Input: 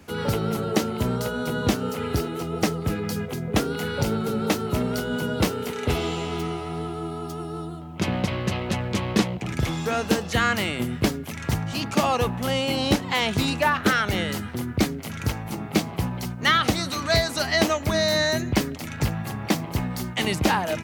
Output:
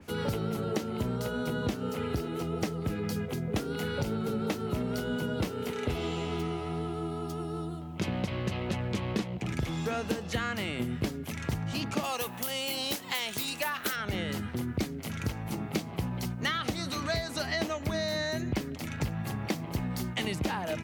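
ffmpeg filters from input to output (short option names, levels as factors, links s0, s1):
-filter_complex "[0:a]asplit=3[s0][s1][s2];[s0]afade=t=out:st=12.03:d=0.02[s3];[s1]aemphasis=mode=production:type=riaa,afade=t=in:st=12.03:d=0.02,afade=t=out:st=13.95:d=0.02[s4];[s2]afade=t=in:st=13.95:d=0.02[s5];[s3][s4][s5]amix=inputs=3:normalize=0,equalizer=f=1100:w=0.63:g=-3,acompressor=threshold=0.0501:ratio=4,adynamicequalizer=threshold=0.00398:dfrequency=3900:dqfactor=0.7:tfrequency=3900:tqfactor=0.7:attack=5:release=100:ratio=0.375:range=2.5:mode=cutabove:tftype=highshelf,volume=0.794"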